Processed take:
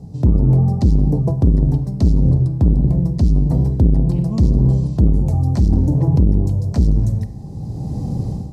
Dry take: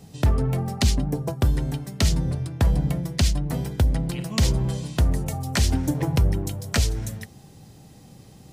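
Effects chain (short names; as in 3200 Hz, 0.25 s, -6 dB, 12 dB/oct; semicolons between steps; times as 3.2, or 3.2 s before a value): limiter -17 dBFS, peak gain reduction 6 dB; RIAA curve playback; AGC gain up to 15 dB; HPF 67 Hz 6 dB/oct; band shelf 2100 Hz -13.5 dB; Schroeder reverb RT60 0.95 s, combs from 31 ms, DRR 13.5 dB; core saturation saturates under 150 Hz; gain +2 dB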